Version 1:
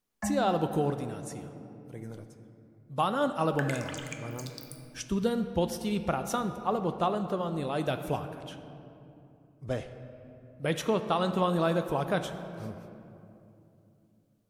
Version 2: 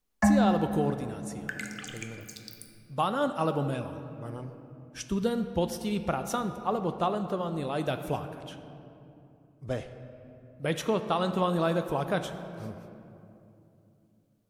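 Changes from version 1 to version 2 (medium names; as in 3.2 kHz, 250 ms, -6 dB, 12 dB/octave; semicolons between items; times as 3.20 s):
first sound +11.0 dB; second sound: entry -2.10 s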